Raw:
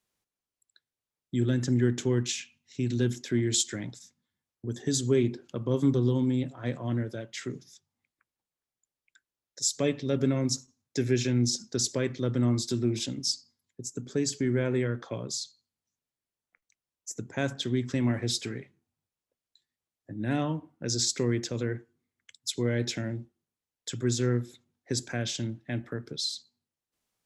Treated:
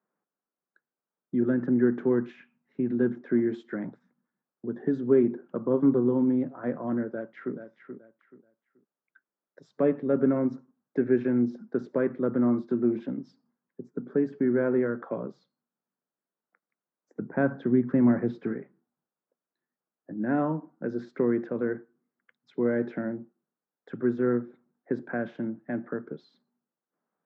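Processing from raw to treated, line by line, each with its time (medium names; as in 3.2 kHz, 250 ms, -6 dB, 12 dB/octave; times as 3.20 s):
7.12–7.55 s: echo throw 430 ms, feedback 25%, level -9 dB
17.21–18.53 s: bass shelf 180 Hz +10.5 dB
whole clip: Chebyshev band-pass 180–1500 Hz, order 3; trim +4.5 dB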